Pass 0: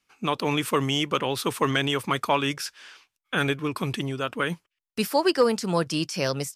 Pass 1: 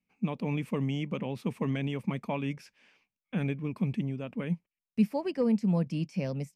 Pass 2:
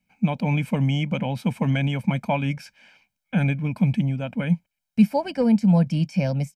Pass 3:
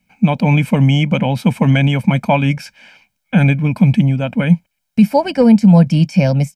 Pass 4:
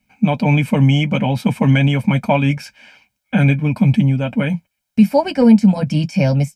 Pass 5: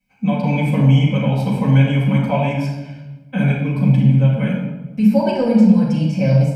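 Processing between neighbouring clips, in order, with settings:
EQ curve 110 Hz 0 dB, 210 Hz +11 dB, 340 Hz -6 dB, 550 Hz -3 dB, 910 Hz -8 dB, 1400 Hz -18 dB, 2300 Hz -4 dB, 3500 Hz -17 dB, 5300 Hz -16 dB, 10000 Hz -19 dB; gain -5.5 dB
comb 1.3 ms, depth 74%; gain +7.5 dB
maximiser +11 dB; gain -1 dB
notch comb 170 Hz
reverb RT60 1.2 s, pre-delay 4 ms, DRR -8 dB; gain -12 dB

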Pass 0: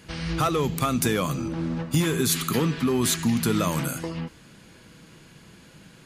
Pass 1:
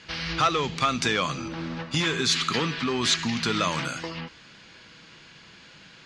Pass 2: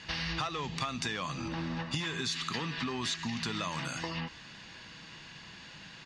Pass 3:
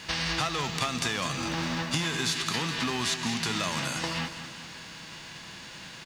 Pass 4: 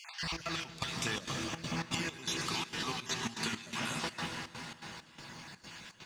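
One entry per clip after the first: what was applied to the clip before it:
LPF 5500 Hz 24 dB/oct; tilt shelf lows -7 dB, about 750 Hz
comb 1.1 ms, depth 34%; compressor 6:1, threshold -32 dBFS, peak gain reduction 13.5 dB
spectral whitening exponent 0.6; feedback echo 0.203 s, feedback 55%, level -11 dB; gain +5 dB
random spectral dropouts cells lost 39%; reverb RT60 5.1 s, pre-delay 0.103 s, DRR 3 dB; step gate "x.xx.xx..xxxx.xx" 165 bpm -12 dB; gain -5 dB

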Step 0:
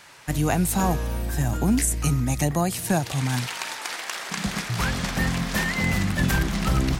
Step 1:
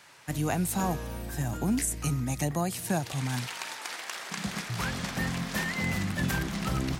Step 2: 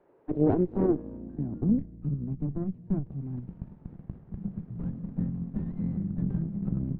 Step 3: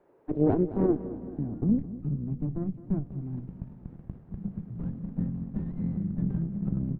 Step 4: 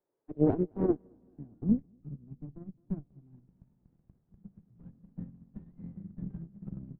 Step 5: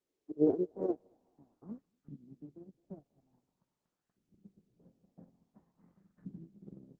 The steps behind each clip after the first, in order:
HPF 77 Hz; gain -6 dB
three-band isolator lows -13 dB, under 260 Hz, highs -19 dB, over 4500 Hz; added harmonics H 4 -7 dB, 7 -24 dB, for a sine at -18 dBFS; low-pass sweep 410 Hz -> 180 Hz, 0.41–1.92; gain +6.5 dB
feedback echo 0.214 s, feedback 59%, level -15.5 dB
upward expander 2.5:1, over -35 dBFS
LFO band-pass saw up 0.48 Hz 270–1600 Hz; gain +2 dB; Opus 16 kbps 48000 Hz

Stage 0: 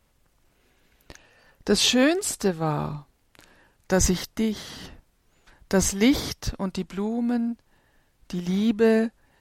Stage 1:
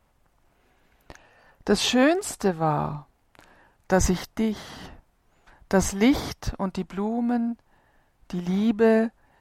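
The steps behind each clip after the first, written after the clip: EQ curve 510 Hz 0 dB, 730 Hz +6 dB, 4100 Hz -5 dB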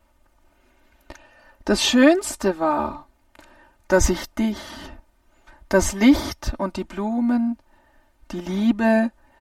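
comb 3.3 ms, depth 94%; gain +1 dB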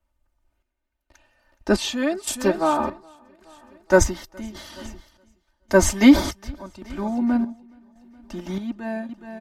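feedback echo 0.42 s, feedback 52%, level -15 dB; chopper 0.88 Hz, depth 65%, duty 55%; three-band expander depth 40%; gain -1 dB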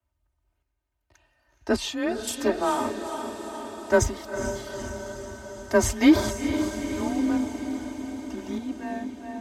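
diffused feedback echo 0.454 s, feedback 67%, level -8.5 dB; added harmonics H 8 -33 dB, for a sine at -1.5 dBFS; frequency shift +26 Hz; gain -4.5 dB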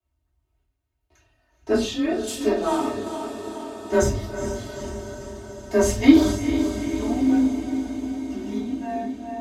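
reverb RT60 0.40 s, pre-delay 3 ms, DRR -8 dB; gain -9 dB

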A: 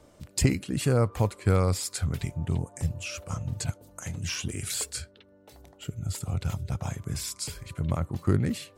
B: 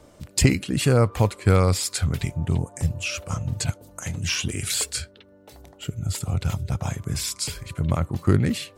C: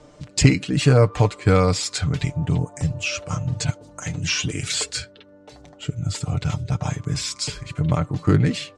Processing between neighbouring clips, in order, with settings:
dynamic EQ 3000 Hz, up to +4 dB, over -45 dBFS, Q 0.87; gain +5 dB
LPF 7500 Hz 24 dB/oct; comb 6.7 ms, depth 56%; gain +1.5 dB

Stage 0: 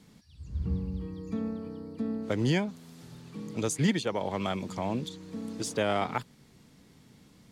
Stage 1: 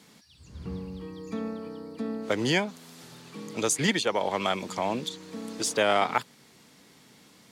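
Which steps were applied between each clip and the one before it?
HPF 570 Hz 6 dB/oct; gain +7.5 dB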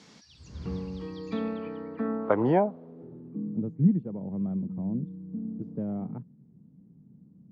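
high shelf 3400 Hz -8 dB; low-pass sweep 5900 Hz -> 180 Hz, 1.03–3.66; gain +2 dB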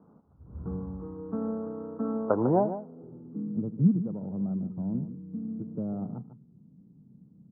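median filter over 25 samples; Chebyshev low-pass 1400 Hz, order 5; echo 0.149 s -11.5 dB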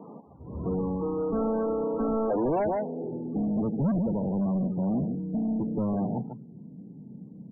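treble ducked by the level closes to 870 Hz, closed at -23.5 dBFS; overdrive pedal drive 35 dB, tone 1200 Hz, clips at -12 dBFS; loudest bins only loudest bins 32; gain -6.5 dB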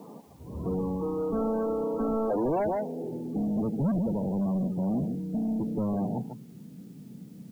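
added noise white -65 dBFS; gain -1 dB

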